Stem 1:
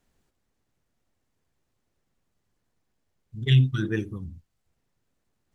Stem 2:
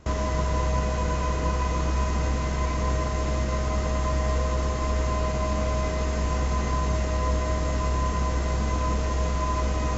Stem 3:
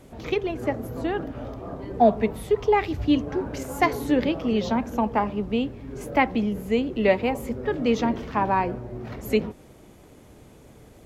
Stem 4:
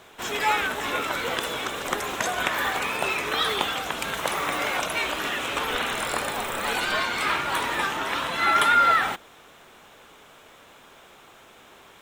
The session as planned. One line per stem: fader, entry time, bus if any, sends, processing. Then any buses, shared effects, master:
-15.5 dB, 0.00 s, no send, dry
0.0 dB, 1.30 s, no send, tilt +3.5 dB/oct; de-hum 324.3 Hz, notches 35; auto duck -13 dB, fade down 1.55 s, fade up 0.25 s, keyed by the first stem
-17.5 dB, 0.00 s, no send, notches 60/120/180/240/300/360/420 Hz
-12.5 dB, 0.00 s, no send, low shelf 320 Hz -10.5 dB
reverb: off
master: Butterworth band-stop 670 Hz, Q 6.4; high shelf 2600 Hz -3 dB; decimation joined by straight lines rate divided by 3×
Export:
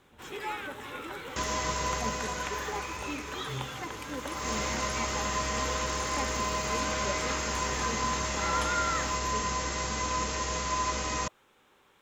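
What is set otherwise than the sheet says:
stem 1 -15.5 dB -> -21.5 dB; stem 4: missing low shelf 320 Hz -10.5 dB; master: missing decimation joined by straight lines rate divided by 3×

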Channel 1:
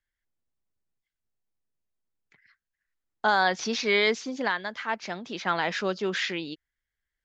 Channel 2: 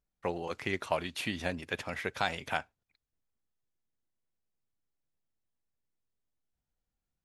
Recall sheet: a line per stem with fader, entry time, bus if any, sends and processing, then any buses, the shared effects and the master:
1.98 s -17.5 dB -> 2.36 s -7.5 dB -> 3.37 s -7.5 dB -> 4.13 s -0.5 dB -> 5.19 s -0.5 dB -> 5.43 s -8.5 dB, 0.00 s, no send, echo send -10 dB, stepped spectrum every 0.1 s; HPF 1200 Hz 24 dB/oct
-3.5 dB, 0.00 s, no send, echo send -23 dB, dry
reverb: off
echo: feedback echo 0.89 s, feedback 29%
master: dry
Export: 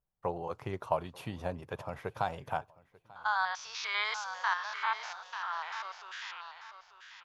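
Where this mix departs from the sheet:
stem 1 -17.5 dB -> -10.5 dB; master: extra ten-band EQ 125 Hz +9 dB, 250 Hz -6 dB, 500 Hz +3 dB, 1000 Hz +8 dB, 2000 Hz -11 dB, 4000 Hz -6 dB, 8000 Hz -9 dB

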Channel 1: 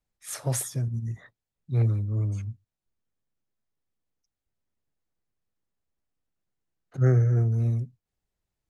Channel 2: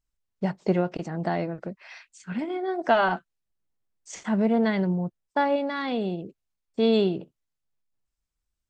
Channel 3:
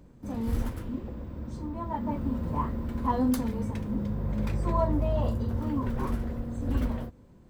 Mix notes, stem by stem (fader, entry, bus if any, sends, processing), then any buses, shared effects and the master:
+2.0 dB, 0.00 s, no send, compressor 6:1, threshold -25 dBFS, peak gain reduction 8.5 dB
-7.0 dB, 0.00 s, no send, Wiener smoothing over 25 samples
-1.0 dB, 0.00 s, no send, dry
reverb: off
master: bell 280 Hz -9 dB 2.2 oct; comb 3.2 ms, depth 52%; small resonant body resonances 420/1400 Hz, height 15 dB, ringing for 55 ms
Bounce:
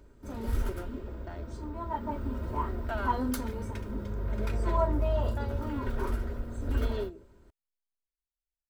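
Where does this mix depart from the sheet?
stem 1: muted; stem 2 -7.0 dB -> -16.0 dB

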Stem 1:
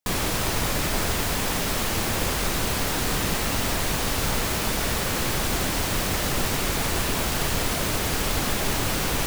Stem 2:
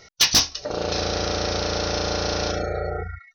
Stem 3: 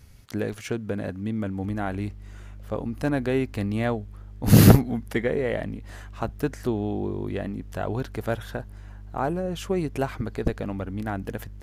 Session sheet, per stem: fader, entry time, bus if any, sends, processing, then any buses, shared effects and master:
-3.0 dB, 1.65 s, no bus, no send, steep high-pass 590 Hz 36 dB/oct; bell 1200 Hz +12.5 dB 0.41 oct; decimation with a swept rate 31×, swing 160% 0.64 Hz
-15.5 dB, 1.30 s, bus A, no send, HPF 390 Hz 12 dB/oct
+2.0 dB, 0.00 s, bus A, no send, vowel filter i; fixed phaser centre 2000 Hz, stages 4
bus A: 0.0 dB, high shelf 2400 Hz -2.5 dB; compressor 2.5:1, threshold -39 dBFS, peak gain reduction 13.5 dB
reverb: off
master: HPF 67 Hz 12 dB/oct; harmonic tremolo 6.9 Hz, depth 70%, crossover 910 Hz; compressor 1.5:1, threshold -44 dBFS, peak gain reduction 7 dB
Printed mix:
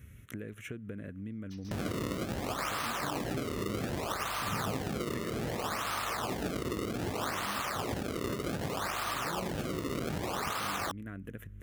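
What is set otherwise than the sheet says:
stem 2 -15.5 dB -> -27.0 dB; stem 3: missing vowel filter i; master: missing harmonic tremolo 6.9 Hz, depth 70%, crossover 910 Hz

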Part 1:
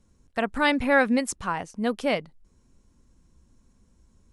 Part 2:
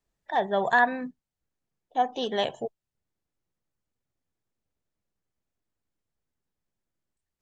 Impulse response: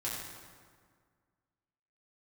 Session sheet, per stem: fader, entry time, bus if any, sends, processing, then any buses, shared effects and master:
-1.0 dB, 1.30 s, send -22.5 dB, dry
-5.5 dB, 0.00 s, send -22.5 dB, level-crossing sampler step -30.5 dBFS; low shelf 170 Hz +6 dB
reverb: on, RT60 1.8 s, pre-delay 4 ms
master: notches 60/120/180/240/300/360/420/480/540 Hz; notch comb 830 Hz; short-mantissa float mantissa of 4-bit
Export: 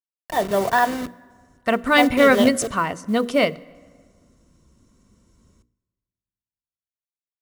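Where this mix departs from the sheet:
stem 1 -1.0 dB -> +7.0 dB; stem 2 -5.5 dB -> +5.5 dB

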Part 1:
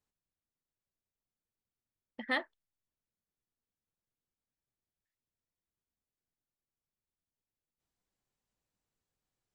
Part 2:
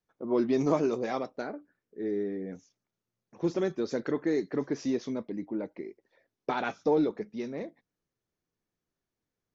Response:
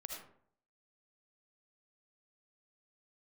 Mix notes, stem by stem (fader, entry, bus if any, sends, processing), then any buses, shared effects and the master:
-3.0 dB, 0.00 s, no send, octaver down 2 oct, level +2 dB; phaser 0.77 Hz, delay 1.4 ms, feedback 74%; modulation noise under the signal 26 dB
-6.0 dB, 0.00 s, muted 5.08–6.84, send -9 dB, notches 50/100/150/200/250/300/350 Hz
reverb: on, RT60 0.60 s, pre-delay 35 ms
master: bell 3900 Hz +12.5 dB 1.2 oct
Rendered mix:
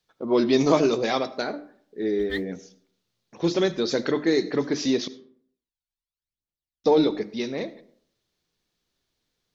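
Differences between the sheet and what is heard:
stem 1 -3.0 dB -> -12.0 dB; stem 2 -6.0 dB -> +5.0 dB

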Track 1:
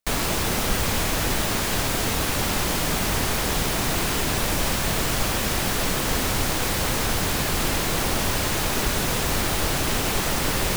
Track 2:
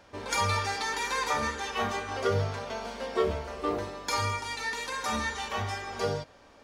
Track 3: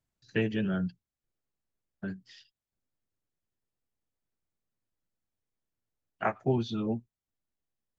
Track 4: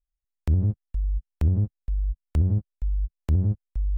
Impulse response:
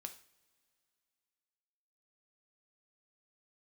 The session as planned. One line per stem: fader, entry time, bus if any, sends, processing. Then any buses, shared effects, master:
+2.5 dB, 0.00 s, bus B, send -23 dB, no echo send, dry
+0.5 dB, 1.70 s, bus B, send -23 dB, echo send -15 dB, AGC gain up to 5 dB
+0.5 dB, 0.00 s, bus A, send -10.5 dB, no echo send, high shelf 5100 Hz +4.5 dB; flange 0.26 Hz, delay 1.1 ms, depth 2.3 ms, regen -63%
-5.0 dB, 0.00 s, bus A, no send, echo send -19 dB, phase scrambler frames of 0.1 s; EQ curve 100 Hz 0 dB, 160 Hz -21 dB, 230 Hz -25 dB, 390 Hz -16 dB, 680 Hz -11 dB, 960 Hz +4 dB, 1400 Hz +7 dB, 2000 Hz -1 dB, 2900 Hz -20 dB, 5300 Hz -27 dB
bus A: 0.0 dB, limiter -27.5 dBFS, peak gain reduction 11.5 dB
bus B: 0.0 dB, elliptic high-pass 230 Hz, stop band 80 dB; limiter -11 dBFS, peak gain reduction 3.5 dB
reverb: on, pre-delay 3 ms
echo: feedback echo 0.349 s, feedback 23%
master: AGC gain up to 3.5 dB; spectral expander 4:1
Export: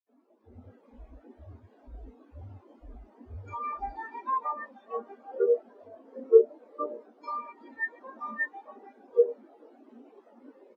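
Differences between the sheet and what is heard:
stem 2: entry 1.70 s -> 3.15 s; stem 3 +0.5 dB -> -11.0 dB

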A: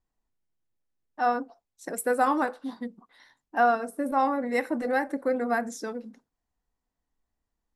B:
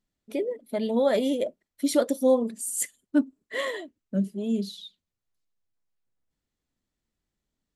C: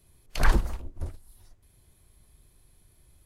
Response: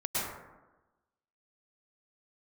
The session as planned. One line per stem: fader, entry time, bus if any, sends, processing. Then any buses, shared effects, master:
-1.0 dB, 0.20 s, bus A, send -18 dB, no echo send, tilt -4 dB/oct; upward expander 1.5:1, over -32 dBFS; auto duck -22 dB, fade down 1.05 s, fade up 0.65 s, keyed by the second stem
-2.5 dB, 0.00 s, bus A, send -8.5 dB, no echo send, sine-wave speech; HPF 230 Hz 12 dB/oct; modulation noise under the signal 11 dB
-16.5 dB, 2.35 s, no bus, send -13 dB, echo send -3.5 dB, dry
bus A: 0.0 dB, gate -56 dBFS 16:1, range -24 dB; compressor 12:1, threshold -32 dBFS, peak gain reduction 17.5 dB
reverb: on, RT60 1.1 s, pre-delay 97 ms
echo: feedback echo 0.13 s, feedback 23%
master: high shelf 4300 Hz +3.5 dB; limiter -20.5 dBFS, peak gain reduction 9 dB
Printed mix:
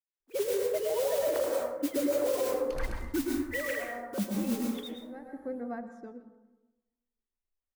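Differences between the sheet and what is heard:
stem A -1.0 dB -> -12.5 dB; master: missing high shelf 4300 Hz +3.5 dB

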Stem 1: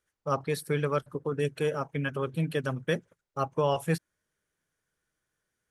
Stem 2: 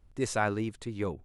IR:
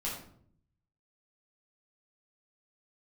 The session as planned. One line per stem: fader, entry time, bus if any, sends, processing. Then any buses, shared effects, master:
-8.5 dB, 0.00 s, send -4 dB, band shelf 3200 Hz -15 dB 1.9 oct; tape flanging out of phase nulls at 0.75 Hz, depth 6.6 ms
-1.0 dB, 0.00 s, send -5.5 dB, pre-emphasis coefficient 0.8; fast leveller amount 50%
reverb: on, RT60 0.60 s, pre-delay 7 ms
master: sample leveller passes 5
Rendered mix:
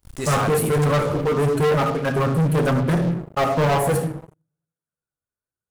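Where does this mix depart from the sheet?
stem 1 -8.5 dB -> -1.5 dB; stem 2 -1.0 dB -> -7.5 dB

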